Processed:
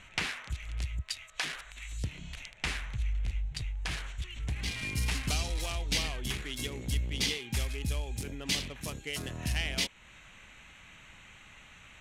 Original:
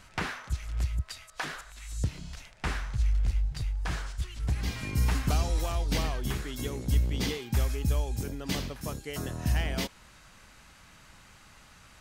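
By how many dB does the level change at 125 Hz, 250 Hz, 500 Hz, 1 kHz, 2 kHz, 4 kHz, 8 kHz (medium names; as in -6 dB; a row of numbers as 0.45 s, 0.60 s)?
-5.5 dB, -5.5 dB, -5.5 dB, -6.0 dB, +2.0 dB, +5.0 dB, +2.5 dB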